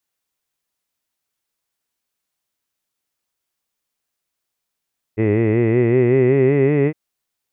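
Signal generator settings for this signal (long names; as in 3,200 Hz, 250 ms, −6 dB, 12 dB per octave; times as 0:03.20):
vowel by formant synthesis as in hid, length 1.76 s, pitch 105 Hz, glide +6 semitones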